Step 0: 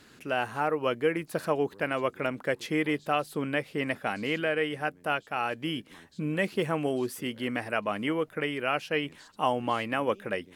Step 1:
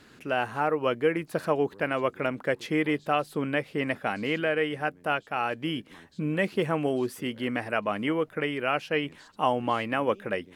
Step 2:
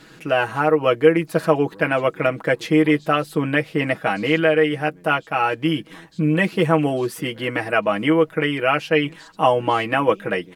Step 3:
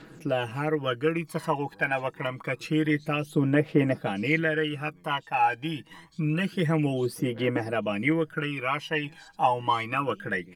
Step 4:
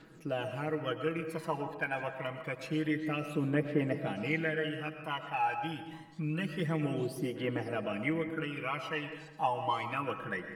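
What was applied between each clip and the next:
high shelf 4400 Hz -6 dB; gain +2 dB
comb 6.2 ms, depth 71%; gain +6.5 dB
phaser 0.27 Hz, delay 1.3 ms, feedback 68%; gain -9 dB
reverb RT60 1.2 s, pre-delay 70 ms, DRR 7.5 dB; gain -8 dB

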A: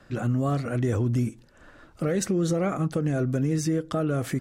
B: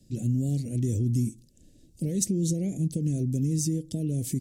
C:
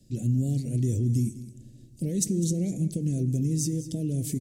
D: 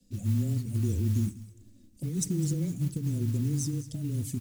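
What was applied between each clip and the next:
dynamic EQ 2000 Hz, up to +5 dB, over -48 dBFS, Q 1.1; Chebyshev band-stop 180–7400 Hz, order 2; tone controls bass -9 dB, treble -2 dB; gain +8 dB
echo 0.203 s -15.5 dB; on a send at -16.5 dB: reverb RT60 2.4 s, pre-delay 4 ms
envelope flanger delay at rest 4.1 ms, full sweep at -21 dBFS; modulation noise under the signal 24 dB; frequency shift -17 Hz; gain -2 dB

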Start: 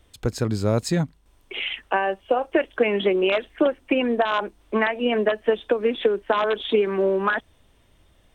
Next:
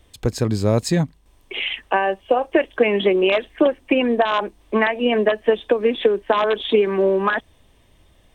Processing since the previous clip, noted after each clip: notch 1400 Hz, Q 8.1; gain +3.5 dB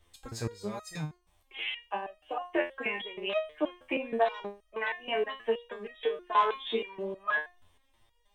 graphic EQ 125/250/500/1000 Hz -6/-7/-3/+4 dB; stepped resonator 6.3 Hz 86–630 Hz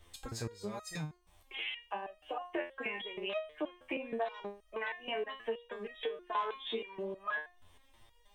compressor 2:1, threshold -49 dBFS, peak gain reduction 15.5 dB; gain +5 dB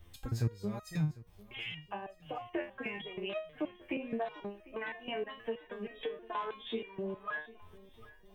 graphic EQ 125/500/1000/2000/4000/8000 Hz +7/-5/-6/-4/-6/-11 dB; swung echo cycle 1.248 s, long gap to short 1.5:1, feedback 32%, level -20.5 dB; gain +4.5 dB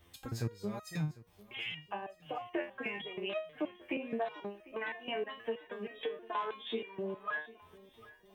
HPF 220 Hz 6 dB/oct; gain +1.5 dB

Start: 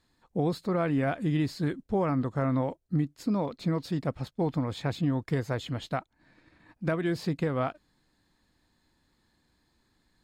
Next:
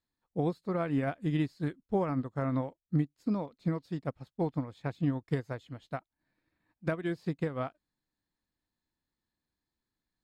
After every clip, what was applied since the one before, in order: upward expander 2.5:1, over -36 dBFS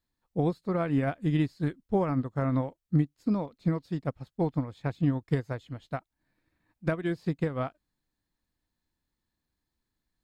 low shelf 87 Hz +7.5 dB; gain +2.5 dB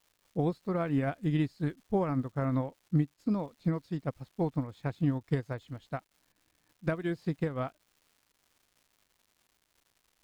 crackle 330/s -52 dBFS; gain -2.5 dB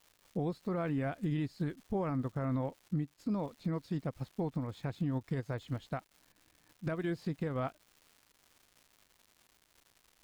compressor, threshold -30 dBFS, peak gain reduction 8.5 dB; limiter -30.5 dBFS, peak gain reduction 8.5 dB; gain +4.5 dB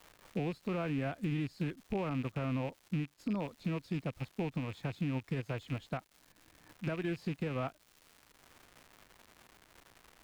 rattling part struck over -44 dBFS, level -36 dBFS; three-band squash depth 40%; gain -1 dB

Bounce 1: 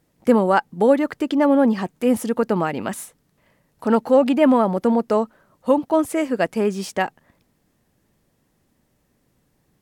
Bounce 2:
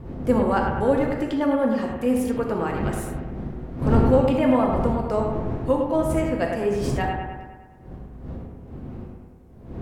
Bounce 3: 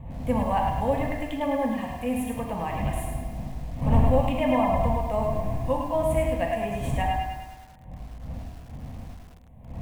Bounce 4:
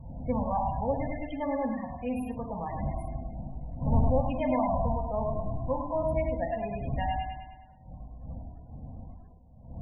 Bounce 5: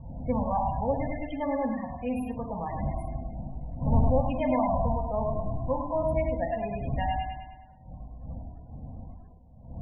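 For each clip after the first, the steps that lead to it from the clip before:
wind noise 230 Hz -26 dBFS; analogue delay 0.103 s, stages 2048, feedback 60%, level -5 dB; non-linear reverb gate 0.1 s flat, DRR 3 dB; gain -7 dB
fixed phaser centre 1400 Hz, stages 6; lo-fi delay 0.106 s, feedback 35%, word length 8-bit, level -5.5 dB
loudest bins only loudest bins 32; gain -4.5 dB
low-pass opened by the level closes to 2100 Hz, open at -27 dBFS; gain +1.5 dB

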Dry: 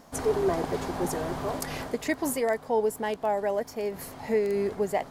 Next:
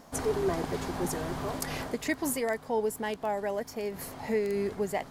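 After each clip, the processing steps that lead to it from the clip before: dynamic EQ 610 Hz, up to -5 dB, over -36 dBFS, Q 0.77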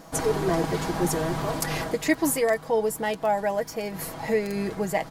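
comb 6.2 ms, depth 62%; gain +5 dB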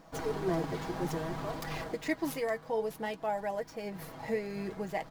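median filter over 5 samples; flange 0.58 Hz, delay 0.8 ms, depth 8.1 ms, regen +72%; gain -4.5 dB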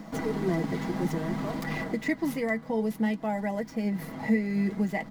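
small resonant body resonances 220/2000 Hz, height 18 dB, ringing for 75 ms; three-band squash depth 40%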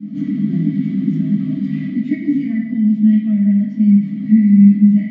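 vowel filter i; reverb RT60 1.1 s, pre-delay 3 ms, DRR -14 dB; gain -6 dB

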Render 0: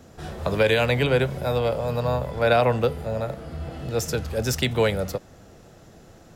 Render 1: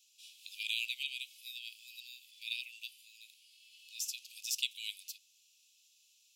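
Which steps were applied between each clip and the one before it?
steep high-pass 2500 Hz 96 dB/oct; gain -6 dB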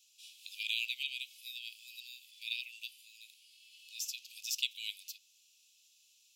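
dynamic EQ 9400 Hz, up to -7 dB, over -58 dBFS, Q 1.8; gain +1 dB

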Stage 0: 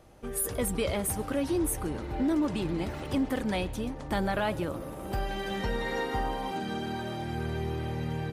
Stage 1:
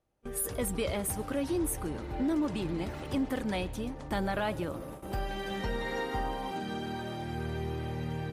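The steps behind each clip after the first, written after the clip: gate with hold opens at -29 dBFS; gain -2.5 dB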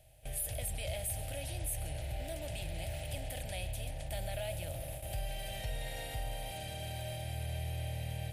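per-bin compression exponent 0.6; EQ curve 130 Hz 0 dB, 210 Hz -24 dB, 420 Hz -24 dB, 650 Hz -1 dB, 1100 Hz -29 dB, 1600 Hz -14 dB, 2600 Hz -2 dB, 6000 Hz -5 dB, 11000 Hz 0 dB; in parallel at +2 dB: limiter -31.5 dBFS, peak gain reduction 11 dB; on the sum: gain -8 dB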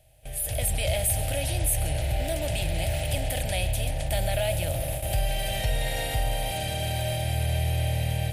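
AGC gain up to 10.5 dB; gain +2 dB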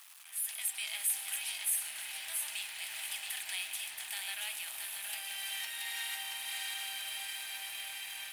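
zero-crossing step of -39 dBFS; steep high-pass 950 Hz 48 dB/oct; lo-fi delay 0.676 s, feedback 35%, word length 8-bit, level -4 dB; gain -6.5 dB

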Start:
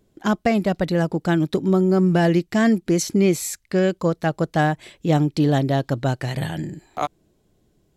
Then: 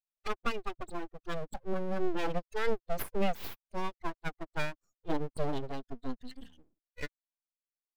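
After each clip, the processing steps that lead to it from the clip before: per-bin expansion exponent 3; full-wave rectifier; gain -5.5 dB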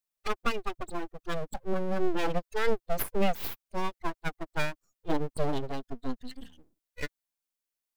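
high shelf 7600 Hz +5 dB; gain +3.5 dB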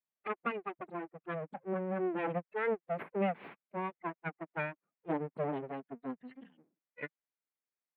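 elliptic band-pass 160–2300 Hz, stop band 40 dB; gain -3.5 dB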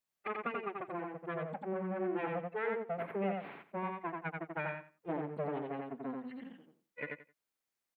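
compressor 2:1, threshold -44 dBFS, peak gain reduction 9.5 dB; on a send: feedback echo 87 ms, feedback 19%, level -3 dB; on the sum: gain +4 dB

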